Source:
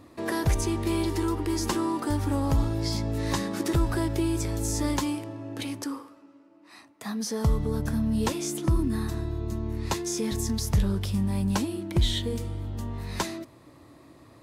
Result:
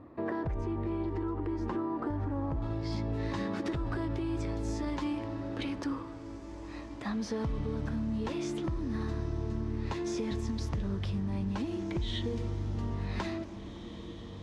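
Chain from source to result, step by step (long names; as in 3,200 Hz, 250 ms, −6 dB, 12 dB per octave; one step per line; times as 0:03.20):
low-pass filter 1,400 Hz 12 dB per octave, from 0:02.62 3,300 Hz
brickwall limiter −21.5 dBFS, peak gain reduction 7.5 dB
downward compressor, threshold −30 dBFS, peak gain reduction 6 dB
feedback delay with all-pass diffusion 1,951 ms, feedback 59%, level −12 dB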